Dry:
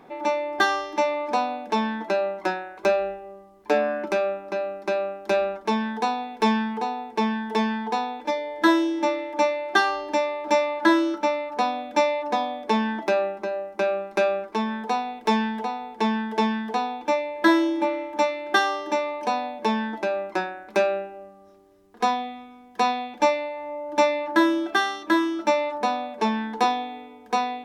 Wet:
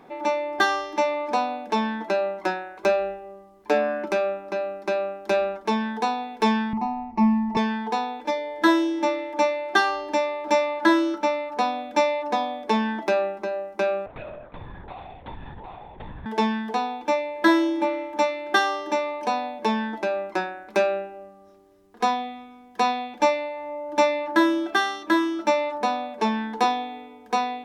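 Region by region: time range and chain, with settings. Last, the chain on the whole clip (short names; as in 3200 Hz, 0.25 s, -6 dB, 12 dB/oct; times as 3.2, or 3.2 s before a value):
6.73–7.57 tilt -4.5 dB/oct + fixed phaser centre 2300 Hz, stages 8
14.06–16.26 compressor 3:1, threshold -40 dBFS + LPC vocoder at 8 kHz whisper
whole clip: dry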